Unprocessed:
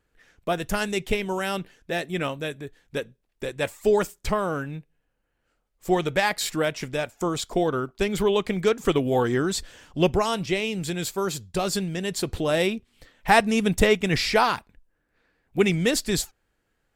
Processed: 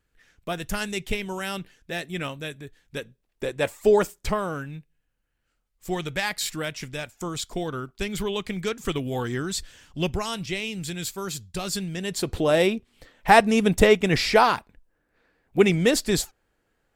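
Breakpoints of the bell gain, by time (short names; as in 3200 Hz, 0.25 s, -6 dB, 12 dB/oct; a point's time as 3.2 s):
bell 560 Hz 2.6 oct
2.96 s -6 dB
3.44 s +2.5 dB
4.13 s +2.5 dB
4.74 s -8.5 dB
11.72 s -8.5 dB
12.42 s +3.5 dB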